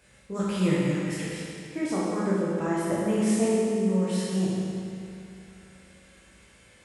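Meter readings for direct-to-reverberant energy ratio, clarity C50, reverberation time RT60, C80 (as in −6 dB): −7.5 dB, −3.5 dB, 2.6 s, −1.5 dB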